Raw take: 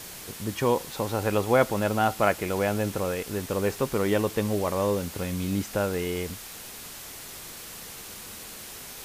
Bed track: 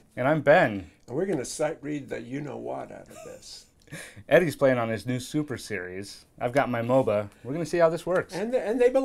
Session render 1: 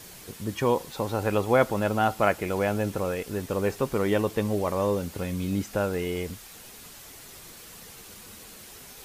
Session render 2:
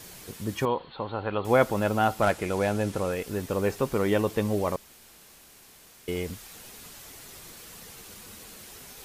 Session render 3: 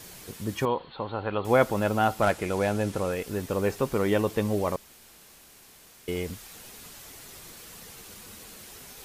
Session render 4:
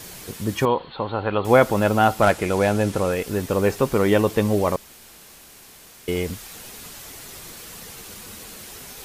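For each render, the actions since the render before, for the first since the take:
broadband denoise 6 dB, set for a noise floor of −42 dBFS
0:00.65–0:01.45: Chebyshev low-pass with heavy ripple 4,400 Hz, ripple 6 dB; 0:02.22–0:03.13: variable-slope delta modulation 64 kbit/s; 0:04.76–0:06.08: fill with room tone
no processing that can be heard
level +6.5 dB; brickwall limiter −3 dBFS, peak gain reduction 2 dB

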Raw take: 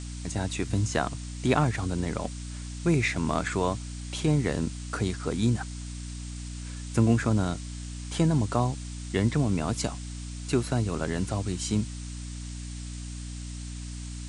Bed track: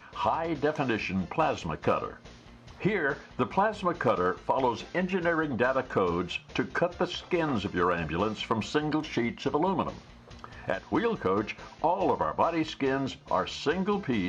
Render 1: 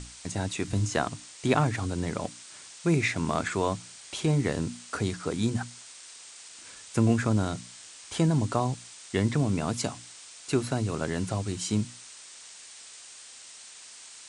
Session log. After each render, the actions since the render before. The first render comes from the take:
mains-hum notches 60/120/180/240/300 Hz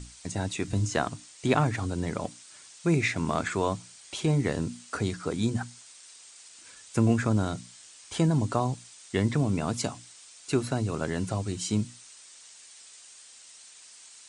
broadband denoise 6 dB, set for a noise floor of −48 dBFS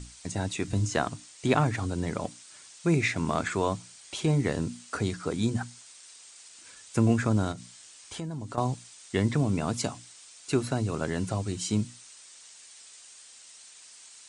0:07.52–0:08.58: downward compressor 2.5 to 1, threshold −38 dBFS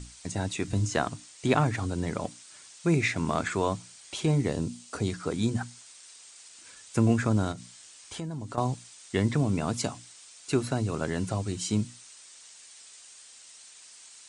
0:04.42–0:05.08: parametric band 1,600 Hz −7 dB 1.1 octaves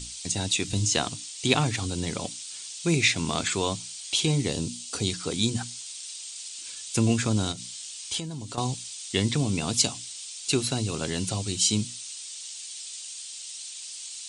high shelf with overshoot 2,300 Hz +10.5 dB, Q 1.5
notch filter 620 Hz, Q 12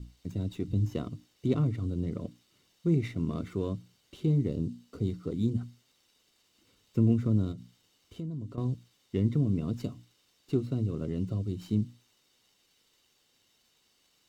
moving average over 53 samples
windowed peak hold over 3 samples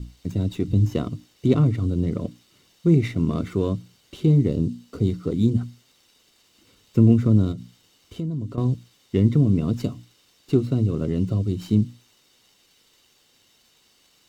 level +9 dB

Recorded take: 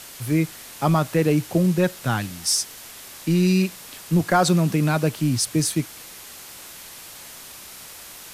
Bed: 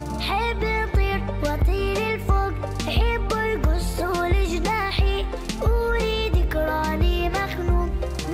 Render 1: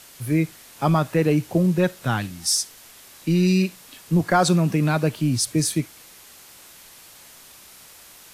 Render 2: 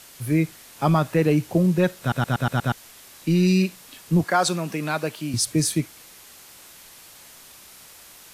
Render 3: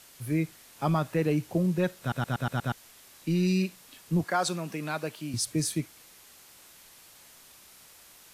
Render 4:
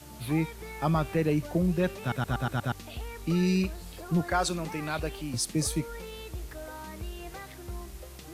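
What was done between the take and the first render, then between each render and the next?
noise reduction from a noise print 6 dB
0:02.00: stutter in place 0.12 s, 6 plays; 0:04.24–0:05.34: high-pass filter 530 Hz 6 dB per octave
level −7 dB
mix in bed −18.5 dB

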